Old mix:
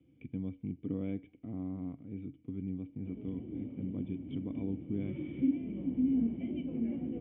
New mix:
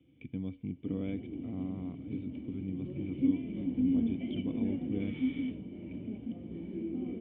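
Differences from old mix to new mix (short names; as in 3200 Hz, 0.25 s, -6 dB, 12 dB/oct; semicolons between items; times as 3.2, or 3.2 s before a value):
first sound +5.0 dB; second sound: entry -2.20 s; master: remove air absorption 390 m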